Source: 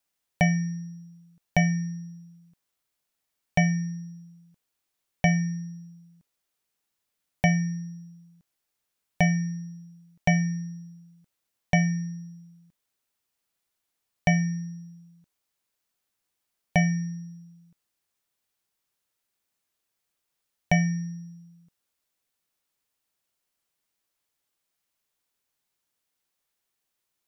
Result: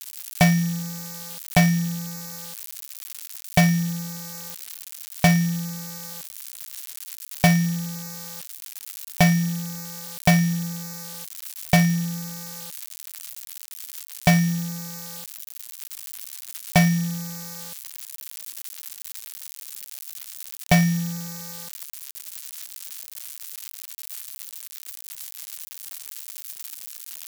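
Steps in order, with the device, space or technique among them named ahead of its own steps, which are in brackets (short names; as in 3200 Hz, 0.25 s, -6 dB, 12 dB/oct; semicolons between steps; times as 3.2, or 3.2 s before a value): budget class-D amplifier (switching dead time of 0.17 ms; switching spikes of -18 dBFS); gain +5 dB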